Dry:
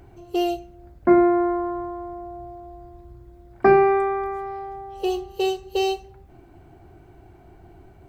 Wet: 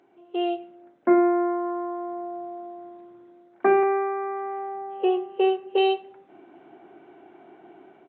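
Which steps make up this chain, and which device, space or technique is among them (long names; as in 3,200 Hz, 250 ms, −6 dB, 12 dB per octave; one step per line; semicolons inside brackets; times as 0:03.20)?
0:03.83–0:05.78: low-pass filter 2,600 Hz 24 dB per octave
Bluetooth headset (high-pass filter 240 Hz 24 dB per octave; automatic gain control gain up to 11 dB; downsampling to 8,000 Hz; level −8 dB; SBC 64 kbit/s 16,000 Hz)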